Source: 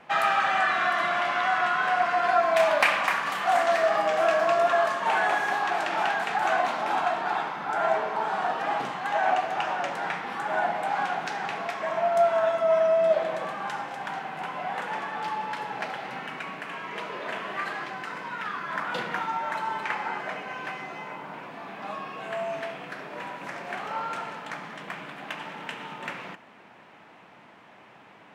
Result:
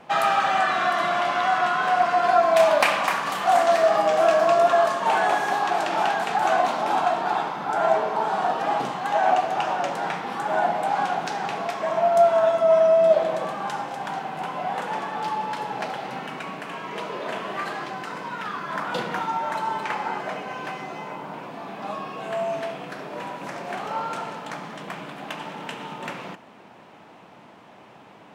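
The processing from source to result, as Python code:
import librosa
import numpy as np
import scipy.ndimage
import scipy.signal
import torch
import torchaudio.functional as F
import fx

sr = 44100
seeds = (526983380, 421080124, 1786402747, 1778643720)

y = fx.peak_eq(x, sr, hz=1900.0, db=-7.5, octaves=1.4)
y = F.gain(torch.from_numpy(y), 6.0).numpy()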